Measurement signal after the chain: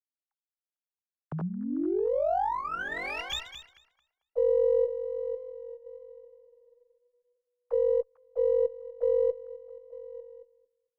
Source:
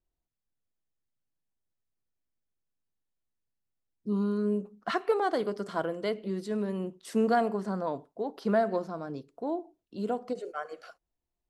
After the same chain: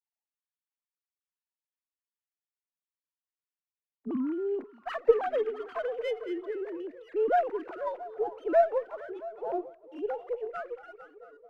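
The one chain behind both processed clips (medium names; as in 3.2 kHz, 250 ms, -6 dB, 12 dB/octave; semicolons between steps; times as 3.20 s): formants replaced by sine waves; repeats whose band climbs or falls 224 ms, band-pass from 2.5 kHz, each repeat -0.7 oct, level -9 dB; sliding maximum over 3 samples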